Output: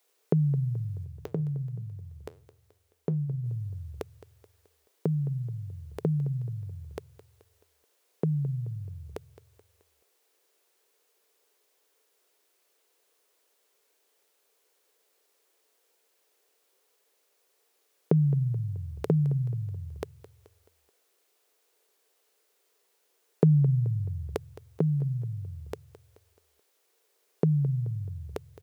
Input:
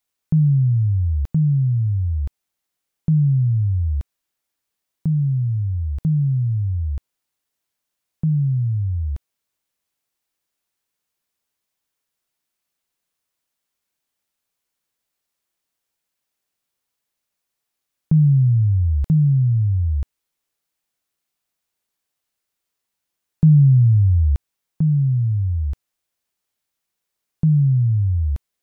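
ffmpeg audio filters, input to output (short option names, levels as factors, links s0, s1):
-filter_complex "[0:a]asplit=3[s0][s1][s2];[s0]afade=t=out:st=1.04:d=0.02[s3];[s1]flanger=delay=6.9:depth=9:regen=-80:speed=1.6:shape=sinusoidal,afade=t=in:st=1.04:d=0.02,afade=t=out:st=3.44:d=0.02[s4];[s2]afade=t=in:st=3.44:d=0.02[s5];[s3][s4][s5]amix=inputs=3:normalize=0,highpass=f=430:t=q:w=4.9,aecho=1:1:215|430|645|860:0.15|0.0718|0.0345|0.0165,volume=2.51"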